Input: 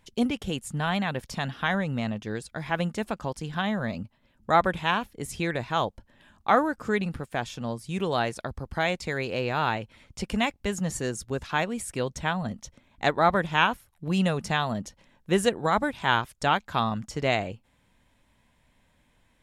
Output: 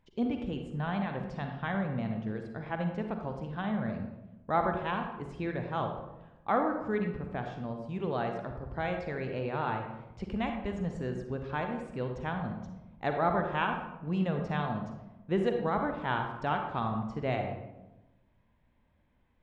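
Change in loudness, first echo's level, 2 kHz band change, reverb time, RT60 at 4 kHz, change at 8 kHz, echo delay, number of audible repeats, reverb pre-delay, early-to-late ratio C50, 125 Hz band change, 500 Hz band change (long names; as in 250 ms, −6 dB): −6.0 dB, no echo audible, −9.5 dB, 1.0 s, 0.55 s, below −25 dB, no echo audible, no echo audible, 40 ms, 5.0 dB, −3.5 dB, −4.5 dB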